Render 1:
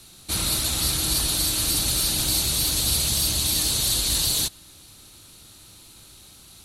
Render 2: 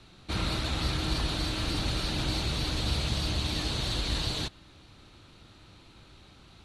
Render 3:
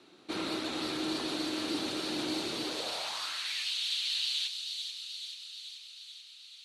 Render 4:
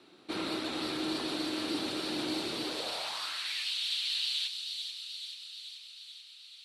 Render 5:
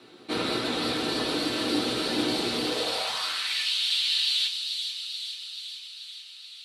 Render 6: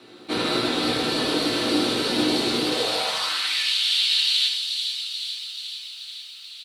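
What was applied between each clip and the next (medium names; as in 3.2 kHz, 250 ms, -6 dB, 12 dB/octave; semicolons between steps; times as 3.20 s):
low-pass 2.6 kHz 12 dB/octave
high-pass sweep 320 Hz -> 3 kHz, 2.61–3.73 s; feedback echo behind a high-pass 434 ms, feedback 66%, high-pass 3.7 kHz, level -4 dB; trim -4 dB
peaking EQ 6.5 kHz -6.5 dB 0.25 oct
reverberation RT60 0.35 s, pre-delay 4 ms, DRR 2 dB; trim +5.5 dB
on a send: early reflections 20 ms -16 dB, 33 ms -15 dB, 76 ms -5.5 dB; on the sum: bit-crushed delay 127 ms, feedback 35%, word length 8-bit, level -15 dB; trim +3 dB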